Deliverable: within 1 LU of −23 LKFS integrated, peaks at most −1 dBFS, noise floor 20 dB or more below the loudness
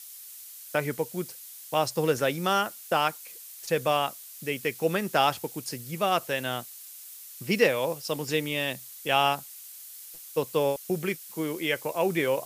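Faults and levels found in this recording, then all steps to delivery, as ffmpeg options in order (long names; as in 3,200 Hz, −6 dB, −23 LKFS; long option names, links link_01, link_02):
background noise floor −45 dBFS; target noise floor −48 dBFS; integrated loudness −28.0 LKFS; sample peak −9.0 dBFS; target loudness −23.0 LKFS
→ -af "afftdn=noise_reduction=6:noise_floor=-45"
-af "volume=5dB"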